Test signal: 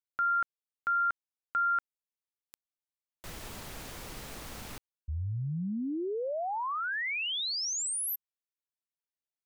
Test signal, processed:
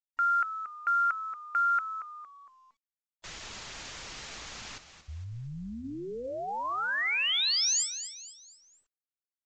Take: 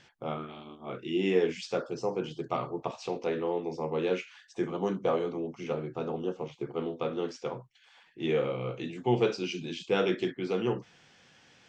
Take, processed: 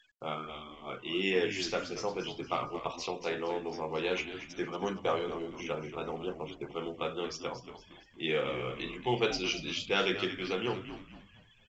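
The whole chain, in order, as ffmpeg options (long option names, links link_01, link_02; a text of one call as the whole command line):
ffmpeg -i in.wav -filter_complex "[0:a]tiltshelf=frequency=970:gain=-6.5,bandreject=frequency=246:width_type=h:width=4,bandreject=frequency=492:width_type=h:width=4,bandreject=frequency=738:width_type=h:width=4,bandreject=frequency=984:width_type=h:width=4,bandreject=frequency=1230:width_type=h:width=4,bandreject=frequency=1476:width_type=h:width=4,bandreject=frequency=1722:width_type=h:width=4,bandreject=frequency=1968:width_type=h:width=4,bandreject=frequency=2214:width_type=h:width=4,bandreject=frequency=2460:width_type=h:width=4,bandreject=frequency=2706:width_type=h:width=4,bandreject=frequency=2952:width_type=h:width=4,bandreject=frequency=3198:width_type=h:width=4,bandreject=frequency=3444:width_type=h:width=4,bandreject=frequency=3690:width_type=h:width=4,bandreject=frequency=3936:width_type=h:width=4,bandreject=frequency=4182:width_type=h:width=4,bandreject=frequency=4428:width_type=h:width=4,bandreject=frequency=4674:width_type=h:width=4,bandreject=frequency=4920:width_type=h:width=4,bandreject=frequency=5166:width_type=h:width=4,bandreject=frequency=5412:width_type=h:width=4,bandreject=frequency=5658:width_type=h:width=4,bandreject=frequency=5904:width_type=h:width=4,bandreject=frequency=6150:width_type=h:width=4,afftfilt=real='re*gte(hypot(re,im),0.00447)':imag='im*gte(hypot(re,im),0.00447)':win_size=1024:overlap=0.75,asplit=2[link_01][link_02];[link_02]asplit=4[link_03][link_04][link_05][link_06];[link_03]adelay=230,afreqshift=-87,volume=-11dB[link_07];[link_04]adelay=460,afreqshift=-174,volume=-19dB[link_08];[link_05]adelay=690,afreqshift=-261,volume=-26.9dB[link_09];[link_06]adelay=920,afreqshift=-348,volume=-34.9dB[link_10];[link_07][link_08][link_09][link_10]amix=inputs=4:normalize=0[link_11];[link_01][link_11]amix=inputs=2:normalize=0" -ar 16000 -c:a pcm_mulaw out.wav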